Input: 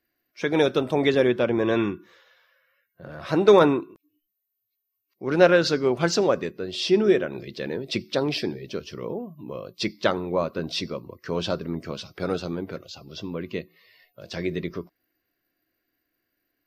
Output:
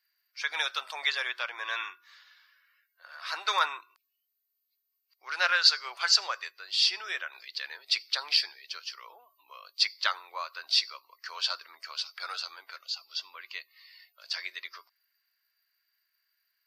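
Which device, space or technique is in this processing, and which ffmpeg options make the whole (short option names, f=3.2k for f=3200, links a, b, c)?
headphones lying on a table: -af "highpass=f=1.1k:w=0.5412,highpass=f=1.1k:w=1.3066,equalizer=f=4.6k:t=o:w=0.24:g=12"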